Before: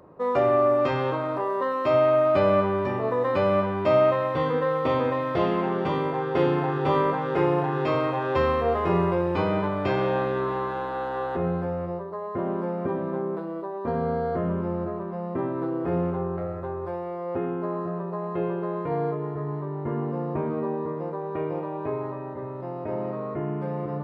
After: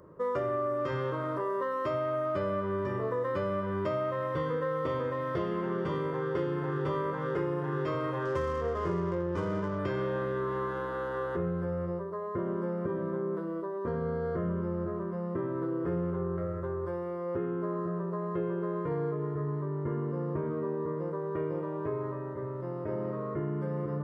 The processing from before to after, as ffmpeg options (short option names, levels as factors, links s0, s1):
-filter_complex "[0:a]asettb=1/sr,asplit=3[s0][s1][s2];[s0]atrim=end=8.254[s3];[s1]atrim=start=8.25:end=9.79,asetpts=PTS-STARTPTS,afade=t=in:d=0.004:c=qsin,afade=t=out:st=1.536:d=0.004:c=qsin,adynamicsmooth=sensitivity=3.5:basefreq=1300[s4];[s2]atrim=start=9.786[s5];[s3][s4]acrossfade=d=0.004:c1=hsin:c2=qsin[s6];[s6][s5]acrossfade=d=0.004:c1=qsin:c2=hsin,equalizer=f=750:t=o:w=0.43:g=-12,acompressor=threshold=0.0447:ratio=6,equalizer=f=250:t=o:w=0.33:g=-8,equalizer=f=800:t=o:w=0.33:g=-5,equalizer=f=2500:t=o:w=0.33:g=-12,equalizer=f=4000:t=o:w=0.33:g=-10"